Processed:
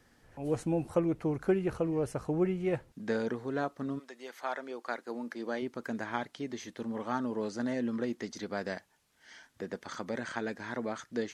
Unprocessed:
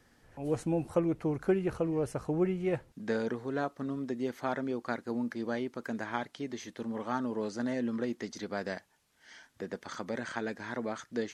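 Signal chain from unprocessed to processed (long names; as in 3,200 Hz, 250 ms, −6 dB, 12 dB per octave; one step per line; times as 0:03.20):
0:03.98–0:05.61: high-pass filter 950 Hz → 240 Hz 12 dB per octave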